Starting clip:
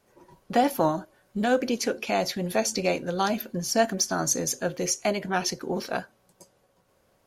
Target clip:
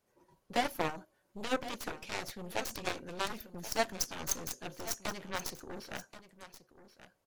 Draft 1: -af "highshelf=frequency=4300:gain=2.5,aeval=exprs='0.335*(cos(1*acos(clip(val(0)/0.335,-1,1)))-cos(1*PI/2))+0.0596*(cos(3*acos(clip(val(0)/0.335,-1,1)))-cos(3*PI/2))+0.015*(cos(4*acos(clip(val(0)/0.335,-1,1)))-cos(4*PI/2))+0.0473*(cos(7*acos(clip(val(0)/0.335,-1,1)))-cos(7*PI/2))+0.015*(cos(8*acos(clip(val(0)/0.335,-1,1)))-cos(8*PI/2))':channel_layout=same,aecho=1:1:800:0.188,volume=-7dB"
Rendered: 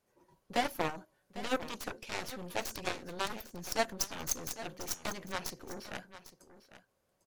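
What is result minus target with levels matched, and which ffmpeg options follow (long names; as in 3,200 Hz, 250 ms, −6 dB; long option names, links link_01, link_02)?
echo 280 ms early
-af "highshelf=frequency=4300:gain=2.5,aeval=exprs='0.335*(cos(1*acos(clip(val(0)/0.335,-1,1)))-cos(1*PI/2))+0.0596*(cos(3*acos(clip(val(0)/0.335,-1,1)))-cos(3*PI/2))+0.015*(cos(4*acos(clip(val(0)/0.335,-1,1)))-cos(4*PI/2))+0.0473*(cos(7*acos(clip(val(0)/0.335,-1,1)))-cos(7*PI/2))+0.015*(cos(8*acos(clip(val(0)/0.335,-1,1)))-cos(8*PI/2))':channel_layout=same,aecho=1:1:1080:0.188,volume=-7dB"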